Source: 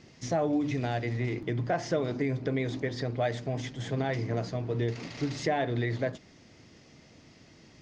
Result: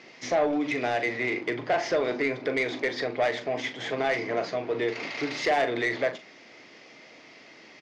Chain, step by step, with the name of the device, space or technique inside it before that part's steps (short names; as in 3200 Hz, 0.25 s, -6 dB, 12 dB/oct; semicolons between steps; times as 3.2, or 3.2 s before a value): intercom (BPF 430–4400 Hz; bell 2200 Hz +6 dB 0.34 oct; soft clip -26.5 dBFS, distortion -14 dB; doubler 40 ms -11 dB); gain +8.5 dB